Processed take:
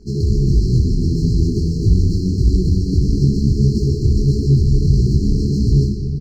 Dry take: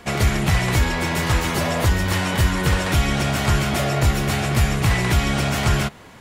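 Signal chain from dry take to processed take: low shelf 84 Hz +9 dB; in parallel at -2 dB: negative-ratio compressor -17 dBFS, ratio -0.5; on the sum: companded quantiser 4-bit; brick-wall FIR band-stop 450–4100 Hz; air absorption 190 m; echo 79 ms -8 dB; on a send at -4 dB: reverb RT60 4.9 s, pre-delay 85 ms; on the sum: detuned doubles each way 55 cents

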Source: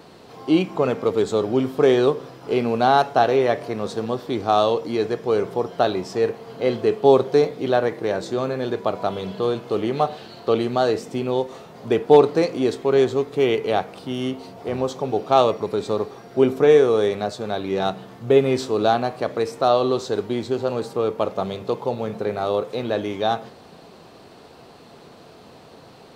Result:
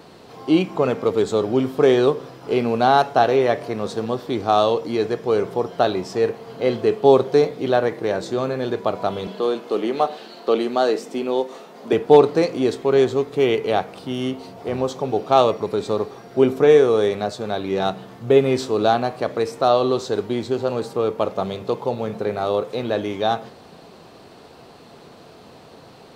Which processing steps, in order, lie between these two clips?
9.27–11.93 HPF 210 Hz 24 dB/oct; gain +1 dB

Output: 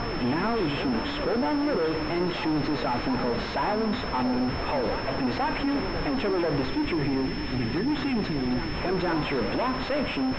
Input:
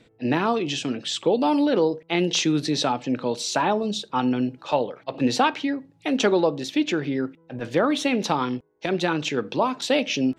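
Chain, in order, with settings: added noise pink -37 dBFS; in parallel at -1.5 dB: negative-ratio compressor -29 dBFS; on the sum: spectral delete 6.66–8.75, 440–1700 Hz; hard clip -22.5 dBFS, distortion -7 dB; reverse echo 0.488 s -9.5 dB; on a send at -14.5 dB: reverb RT60 3.5 s, pre-delay 33 ms; on the sum: pulse-width modulation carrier 5300 Hz; gain -1 dB

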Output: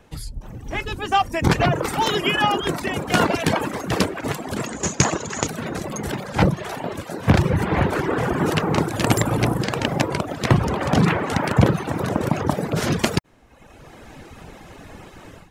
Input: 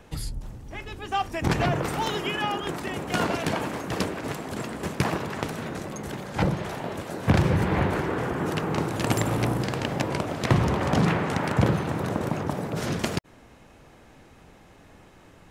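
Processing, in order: reverb removal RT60 0.89 s; AGC gain up to 15 dB; 4.66–5.47 synth low-pass 6700 Hz, resonance Q 14; gain -2 dB

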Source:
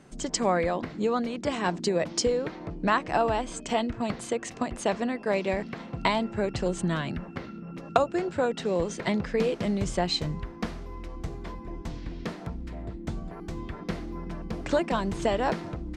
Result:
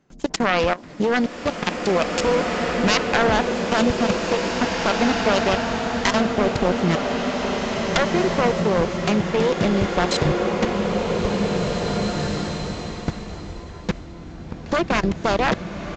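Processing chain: self-modulated delay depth 0.87 ms; in parallel at +2 dB: limiter -19 dBFS, peak gain reduction 11.5 dB; on the sum: level quantiser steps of 23 dB; downsampling 16000 Hz; bloom reverb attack 2.24 s, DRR 0.5 dB; gain +4 dB

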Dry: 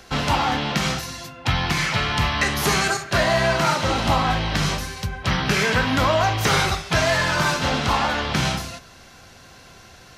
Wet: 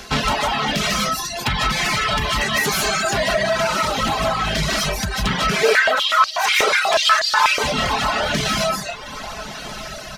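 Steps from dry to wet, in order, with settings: reverb removal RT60 0.69 s; reverb RT60 0.40 s, pre-delay 0.11 s, DRR -3.5 dB; compressor 5:1, threshold -22 dBFS, peak gain reduction 12 dB; high shelf 2800 Hz +5.5 dB; soft clip -21.5 dBFS, distortion -13 dB; high shelf 6900 Hz -4.5 dB; comb 4.7 ms, depth 42%; diffused feedback echo 1.295 s, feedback 41%, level -13 dB; reverb removal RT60 0.88 s; 5.63–7.64 stepped high-pass 8.2 Hz 460–4600 Hz; gain +8 dB

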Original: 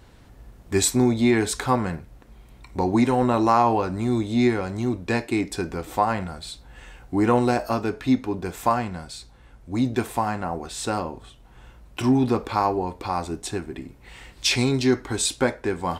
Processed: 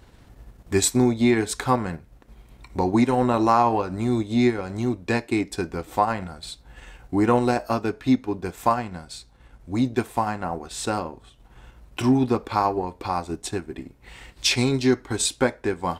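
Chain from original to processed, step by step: transient shaper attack +1 dB, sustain -6 dB

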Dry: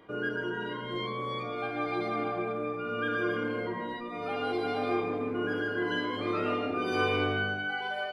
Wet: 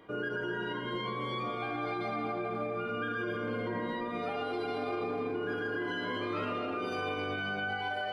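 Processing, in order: echo with dull and thin repeats by turns 0.126 s, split 1300 Hz, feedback 64%, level -5 dB; limiter -26.5 dBFS, peak gain reduction 11.5 dB

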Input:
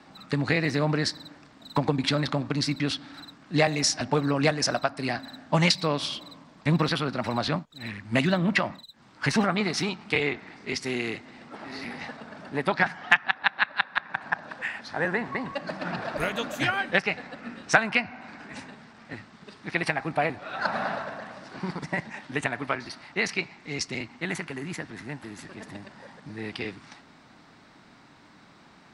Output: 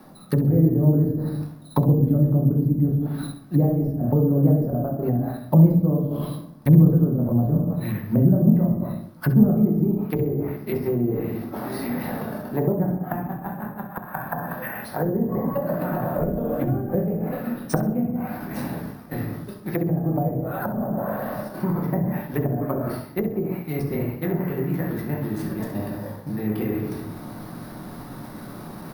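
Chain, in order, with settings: gate -43 dBFS, range -7 dB; reverb RT60 0.65 s, pre-delay 5 ms, DRR -1.5 dB; treble ducked by the level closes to 360 Hz, closed at -20.5 dBFS; reverse; upward compressor, threshold -25 dBFS; reverse; careless resampling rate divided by 3×, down filtered, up hold; bell 2600 Hz -14.5 dB 2.1 oct; feedback echo 66 ms, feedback 28%, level -13 dB; gain +5.5 dB

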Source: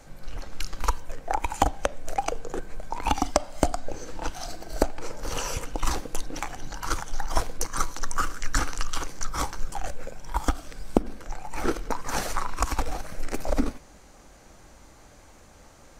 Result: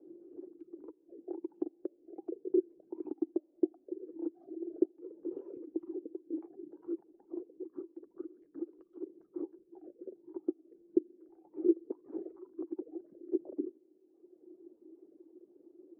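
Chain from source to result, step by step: reverb removal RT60 1.2 s; compressor, threshold -28 dBFS, peak gain reduction 14.5 dB; Butterworth band-pass 350 Hz, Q 5.2; gain +13 dB

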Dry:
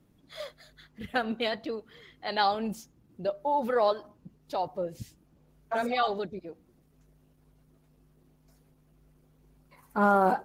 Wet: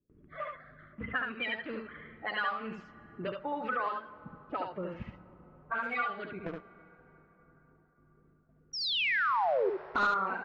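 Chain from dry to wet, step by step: bin magnitudes rounded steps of 30 dB; low-pass opened by the level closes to 540 Hz, open at -26.5 dBFS; gate with hold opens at -56 dBFS; band shelf 1800 Hz +14.5 dB; 6.46–10.07 sample leveller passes 3; compressor 3:1, threshold -40 dBFS, peak gain reduction 22 dB; 8.73–9.7 painted sound fall 360–5800 Hz -32 dBFS; air absorption 150 m; echo 72 ms -4 dB; plate-style reverb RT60 4.9 s, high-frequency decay 0.45×, DRR 17 dB; gain +3 dB

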